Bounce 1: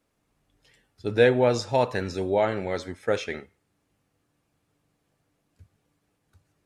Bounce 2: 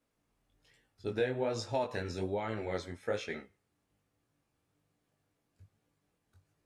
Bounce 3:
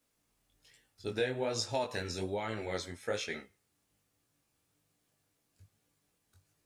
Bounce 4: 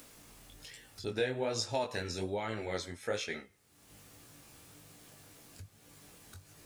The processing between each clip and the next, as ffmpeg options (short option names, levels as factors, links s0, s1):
-af "acompressor=threshold=0.0794:ratio=6,flanger=delay=17.5:depth=5.7:speed=1.2,volume=0.668"
-af "highshelf=f=3000:g=11.5,volume=0.841"
-af "acompressor=mode=upward:threshold=0.0126:ratio=2.5"